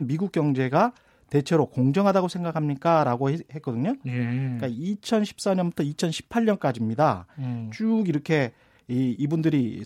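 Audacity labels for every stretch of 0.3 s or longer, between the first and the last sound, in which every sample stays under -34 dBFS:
0.900000	1.310000	silence
8.490000	8.890000	silence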